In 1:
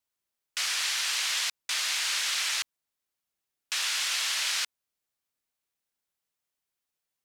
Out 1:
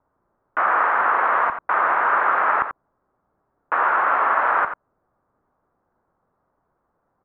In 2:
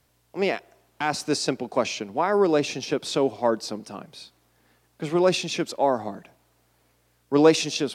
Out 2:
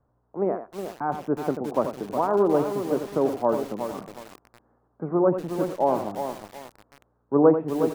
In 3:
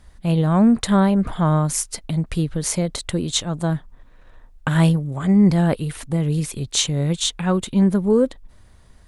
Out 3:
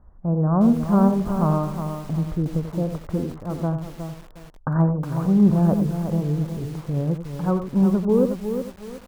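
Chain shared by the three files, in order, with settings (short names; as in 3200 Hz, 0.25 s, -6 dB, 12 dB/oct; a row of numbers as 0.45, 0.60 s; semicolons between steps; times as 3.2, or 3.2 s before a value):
steep low-pass 1300 Hz 36 dB/oct; echo 88 ms -9.5 dB; lo-fi delay 0.364 s, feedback 35%, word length 6-bit, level -7.5 dB; normalise peaks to -6 dBFS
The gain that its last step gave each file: +26.5, -0.5, -2.5 dB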